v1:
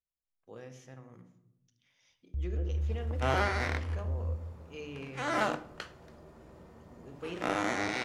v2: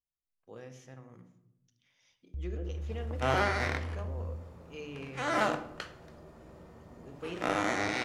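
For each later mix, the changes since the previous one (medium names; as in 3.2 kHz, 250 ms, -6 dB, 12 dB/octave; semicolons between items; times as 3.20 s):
first sound: send off; second sound: send +6.5 dB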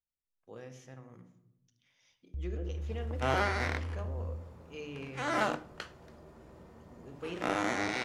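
second sound: send -10.5 dB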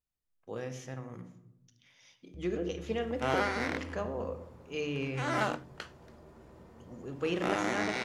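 speech +8.5 dB; first sound: add high-pass 130 Hz 12 dB/octave; second sound: send off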